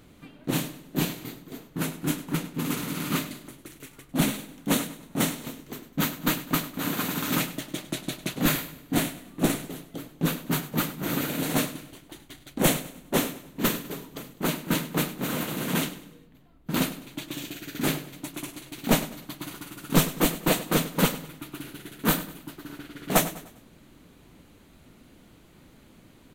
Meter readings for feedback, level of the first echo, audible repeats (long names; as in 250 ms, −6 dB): 40%, −15.0 dB, 3